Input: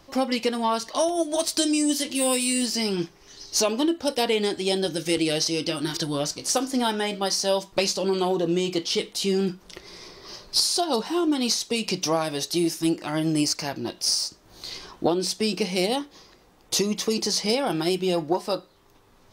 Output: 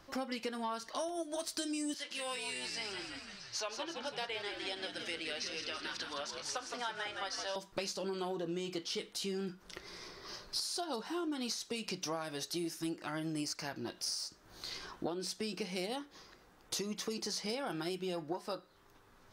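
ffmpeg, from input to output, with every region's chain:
-filter_complex "[0:a]asettb=1/sr,asplit=3[s0][s1][s2];[s0]atrim=end=1.944[s3];[s1]atrim=start=1.94:end=7.56,asetpts=PTS-STARTPTS,afade=t=in:d=0.004:c=qsin,afade=t=out:st=5.616:d=0.004:c=qsin,highpass=690,lowpass=3200,aemphasis=mode=production:type=50kf,asplit=8[s4][s5][s6][s7][s8][s9][s10][s11];[s5]adelay=165,afreqshift=-74,volume=0.422[s12];[s6]adelay=330,afreqshift=-148,volume=0.237[s13];[s7]adelay=495,afreqshift=-222,volume=0.132[s14];[s8]adelay=660,afreqshift=-296,volume=0.0741[s15];[s9]adelay=825,afreqshift=-370,volume=0.0417[s16];[s10]adelay=990,afreqshift=-444,volume=0.0232[s17];[s11]adelay=1155,afreqshift=-518,volume=0.013[s18];[s4][s12][s13][s14][s15][s16][s17][s18]amix=inputs=8:normalize=0,atrim=end_sample=247842[s19];[s2]atrim=start=7.556[s20];[s3][s19]acrossfade=d=0.004:c1=hsin:c2=qsin[s21];[s21][s20]acrossfade=d=0.004:c1=qsin:c2=hsin,equalizer=f=1500:t=o:w=0.72:g=7,acompressor=threshold=0.0251:ratio=2.5,volume=0.447"

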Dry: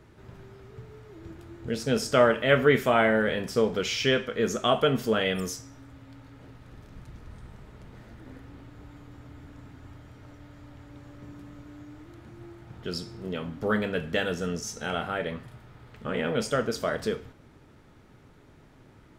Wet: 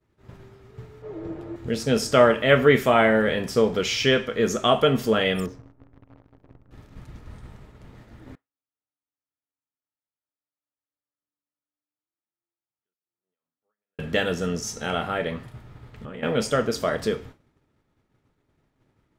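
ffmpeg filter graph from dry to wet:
-filter_complex "[0:a]asettb=1/sr,asplit=3[s0][s1][s2];[s0]atrim=end=1.024[s3];[s1]atrim=start=1.02:end=1.56,asetpts=PTS-STARTPTS,afade=t=in:d=0.004:c=qsin,afade=t=out:st=0.536:d=0.004:c=qsin,lowpass=f=2500:p=1,equalizer=f=530:t=o:w=1.2:g=13,aecho=1:1:6.5:0.39,atrim=end_sample=23814[s4];[s2]atrim=start=1.556[s5];[s3][s4]acrossfade=d=0.004:c1=hsin:c2=qsin[s6];[s6][s5]acrossfade=d=0.004:c1=qsin:c2=hsin,asettb=1/sr,asplit=3[s7][s8][s9];[s7]atrim=end=5.464[s10];[s8]atrim=start=5.46:end=6.71,asetpts=PTS-STARTPTS,afade=t=in:d=0.004:c=qsin,afade=t=out:st=1.246:d=0.004:c=qsin,acrusher=bits=8:dc=4:mix=0:aa=0.000001,adynamicsmooth=sensitivity=3.5:basefreq=760[s11];[s9]atrim=start=6.706[s12];[s10][s11]acrossfade=d=0.004:c1=hsin:c2=qsin[s13];[s13][s12]acrossfade=d=0.004:c1=qsin:c2=hsin,asettb=1/sr,asplit=3[s14][s15][s16];[s14]atrim=end=8.354[s17];[s15]atrim=start=8.35:end=13.99,asetpts=PTS-STARTPTS,afade=t=in:d=0.004:c=qsin,afade=t=out:st=5.636:d=0.004:c=qsin,aderivative,acompressor=threshold=0.00224:ratio=10:attack=3.2:release=140:knee=1:detection=peak,lowpass=1300[s18];[s16]atrim=start=13.986[s19];[s17][s18]acrossfade=d=0.004:c1=hsin:c2=qsin[s20];[s20][s19]acrossfade=d=0.004:c1=qsin:c2=hsin,asettb=1/sr,asplit=3[s21][s22][s23];[s21]atrim=end=15.534[s24];[s22]atrim=start=15.53:end=16.23,asetpts=PTS-STARTPTS,afade=t=in:d=0.004:c=qsin,afade=t=out:st=0.696:d=0.004:c=qsin,lowshelf=f=190:g=5.5,acompressor=threshold=0.0141:ratio=10:attack=3.2:release=140:knee=1:detection=peak[s25];[s23]atrim=start=16.226[s26];[s24][s25]acrossfade=d=0.004:c1=hsin:c2=qsin[s27];[s27][s26]acrossfade=d=0.004:c1=qsin:c2=hsin,bandreject=f=1500:w=24,agate=range=0.0224:threshold=0.00794:ratio=3:detection=peak,volume=1.58"

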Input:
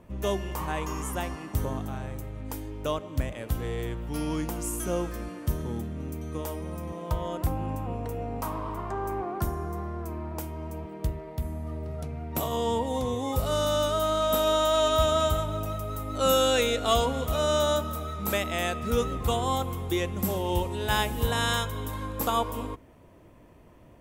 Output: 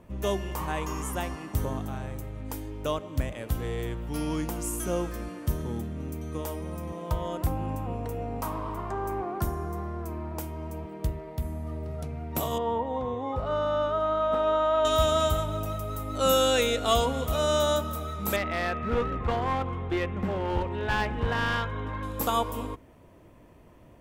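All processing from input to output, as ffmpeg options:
-filter_complex "[0:a]asettb=1/sr,asplit=3[s0][s1][s2];[s0]atrim=end=12.584[s3];[s1]atrim=start=12.58:end=14.85,asetpts=PTS-STARTPTS,afade=t=in:d=0.004:c=qsin,afade=t=out:st=2.266:d=0.004:c=qsin,lowpass=1300,tiltshelf=f=640:g=-5.5[s4];[s2]atrim=start=14.846[s5];[s3][s4]acrossfade=d=0.004:c1=hsin:c2=qsin[s6];[s6][s5]acrossfade=d=0.004:c1=qsin:c2=hsin,asettb=1/sr,asplit=3[s7][s8][s9];[s7]atrim=end=18.364[s10];[s8]atrim=start=18.36:end=22.03,asetpts=PTS-STARTPTS,afade=t=in:d=0.004:c=qsin,afade=t=out:st=3.666:d=0.004:c=qsin,lowpass=f=2000:t=q:w=1.5,aeval=exprs='clip(val(0),-1,0.0562)':c=same[s11];[s9]atrim=start=22.026[s12];[s10][s11]acrossfade=d=0.004:c1=hsin:c2=qsin[s13];[s13][s12]acrossfade=d=0.004:c1=qsin:c2=hsin"

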